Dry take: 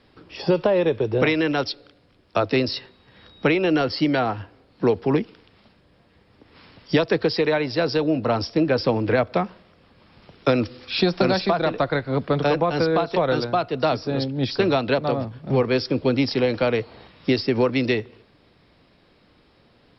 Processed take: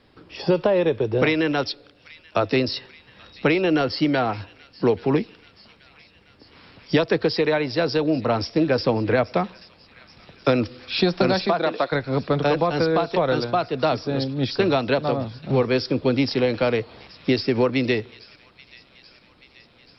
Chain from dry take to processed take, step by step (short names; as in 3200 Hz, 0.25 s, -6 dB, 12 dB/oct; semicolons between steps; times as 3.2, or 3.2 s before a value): 11.47–11.91 HPF 150 Hz -> 390 Hz 12 dB/oct; thin delay 0.832 s, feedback 66%, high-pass 2200 Hz, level -17.5 dB